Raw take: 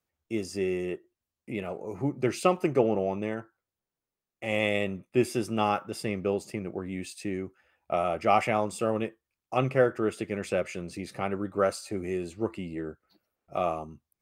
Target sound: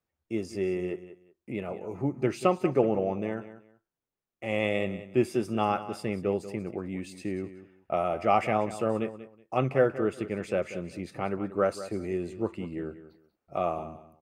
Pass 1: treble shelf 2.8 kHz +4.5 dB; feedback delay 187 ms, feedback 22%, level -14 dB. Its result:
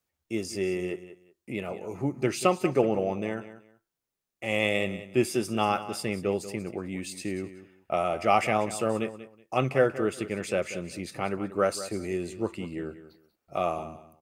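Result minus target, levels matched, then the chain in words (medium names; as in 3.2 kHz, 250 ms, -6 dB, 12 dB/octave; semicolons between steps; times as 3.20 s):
4 kHz band +6.0 dB
treble shelf 2.8 kHz -7.5 dB; feedback delay 187 ms, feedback 22%, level -14 dB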